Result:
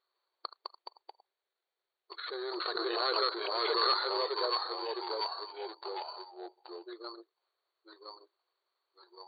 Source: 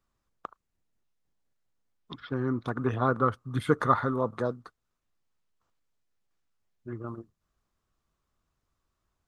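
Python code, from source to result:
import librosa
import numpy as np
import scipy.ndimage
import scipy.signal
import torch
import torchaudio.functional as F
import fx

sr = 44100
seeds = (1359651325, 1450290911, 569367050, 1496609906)

y = fx.rider(x, sr, range_db=10, speed_s=2.0)
y = 10.0 ** (-22.5 / 20.0) * np.tanh(y / 10.0 ** (-22.5 / 20.0))
y = fx.echo_pitch(y, sr, ms=152, semitones=-2, count=3, db_per_echo=-3.0)
y = (np.kron(scipy.signal.resample_poly(y, 1, 8), np.eye(8)[0]) * 8)[:len(y)]
y = fx.brickwall_bandpass(y, sr, low_hz=340.0, high_hz=4600.0)
y = fx.pre_swell(y, sr, db_per_s=25.0, at=(2.17, 4.24), fade=0.02)
y = y * librosa.db_to_amplitude(-3.0)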